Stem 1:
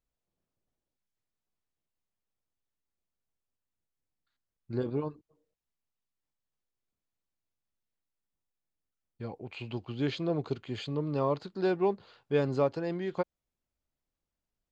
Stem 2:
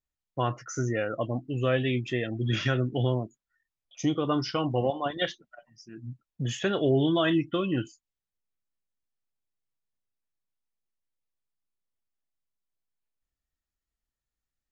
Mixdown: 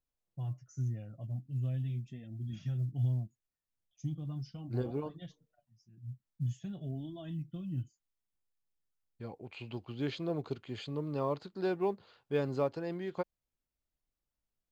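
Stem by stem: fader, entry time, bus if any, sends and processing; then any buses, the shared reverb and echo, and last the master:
−4.5 dB, 0.00 s, no send, no processing
−1.0 dB, 0.00 s, no send, drawn EQ curve 160 Hz 0 dB, 460 Hz −27 dB, 690 Hz −17 dB, 1,300 Hz −30 dB, 7,800 Hz −13 dB; flanger 0.42 Hz, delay 2.9 ms, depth 8 ms, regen −19%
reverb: not used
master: floating-point word with a short mantissa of 6 bits

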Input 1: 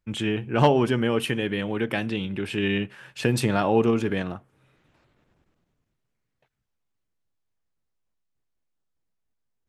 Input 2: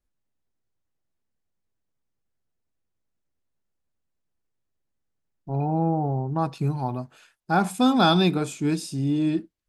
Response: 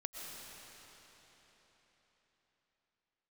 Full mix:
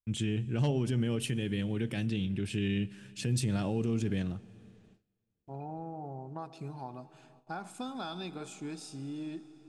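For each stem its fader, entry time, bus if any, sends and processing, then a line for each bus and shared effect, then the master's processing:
+0.5 dB, 0.00 s, send −18 dB, drawn EQ curve 130 Hz 0 dB, 1,000 Hz −19 dB, 7,200 Hz −1 dB; brickwall limiter −23 dBFS, peak gain reduction 8.5 dB
−11.0 dB, 0.00 s, send −10.5 dB, low-shelf EQ 230 Hz −8.5 dB; downward compressor 6 to 1, threshold −27 dBFS, peak gain reduction 11 dB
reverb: on, RT60 4.3 s, pre-delay 80 ms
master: noise gate with hold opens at −50 dBFS; low-pass filter 10,000 Hz 24 dB per octave

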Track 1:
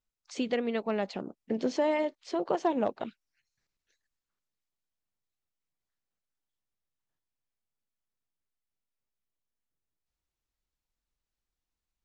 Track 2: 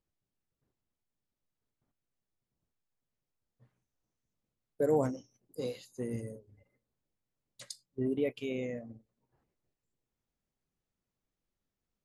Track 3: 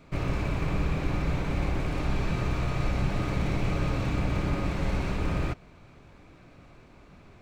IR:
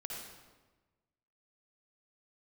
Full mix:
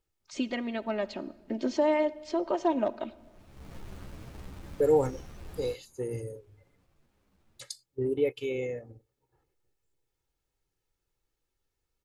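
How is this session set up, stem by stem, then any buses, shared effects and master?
−3.0 dB, 0.00 s, send −15.5 dB, comb filter 3.2 ms, depth 76%
+1.5 dB, 0.00 s, no send, comb filter 2.3 ms, depth 75%
−19.5 dB, 0.20 s, no send, each half-wave held at its own peak; string-ensemble chorus; automatic ducking −21 dB, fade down 0.20 s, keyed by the first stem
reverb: on, RT60 1.2 s, pre-delay 51 ms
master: no processing

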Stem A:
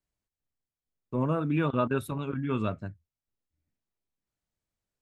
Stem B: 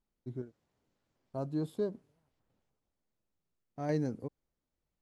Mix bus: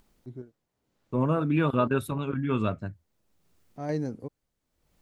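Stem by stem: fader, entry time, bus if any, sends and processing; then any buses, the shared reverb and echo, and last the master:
+2.5 dB, 0.00 s, no send, no processing
+2.0 dB, 0.00 s, no send, upward compression, threshold −51 dBFS; automatic ducking −15 dB, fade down 1.90 s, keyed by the first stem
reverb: not used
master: no processing

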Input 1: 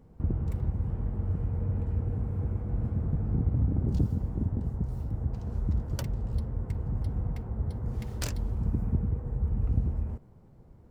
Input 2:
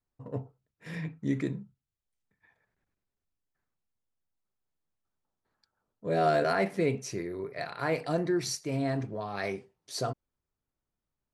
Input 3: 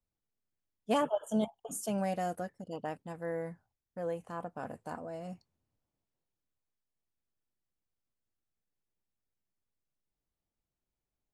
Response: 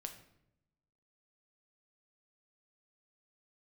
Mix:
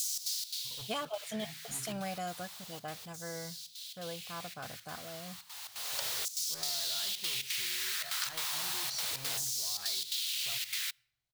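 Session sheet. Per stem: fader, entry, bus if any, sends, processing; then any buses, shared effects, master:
+1.0 dB, 0.00 s, send −20 dB, bit-depth reduction 6 bits, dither triangular; auto-filter high-pass saw down 0.32 Hz 460–6,700 Hz; gate pattern "xx.xx.xxxx" 172 BPM −12 dB; automatic ducking −20 dB, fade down 0.55 s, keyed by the third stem
−8.0 dB, 0.45 s, send −12.5 dB, hard clipping −30.5 dBFS, distortion −7 dB; low-shelf EQ 210 Hz −9 dB
+1.5 dB, 0.00 s, send −22.5 dB, notch comb filter 910 Hz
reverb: on, RT60 0.80 s, pre-delay 6 ms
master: octave-band graphic EQ 125/250/500/4,000 Hz +3/−11/−8/+8 dB; downward compressor 5 to 1, threshold −32 dBFS, peak gain reduction 7.5 dB

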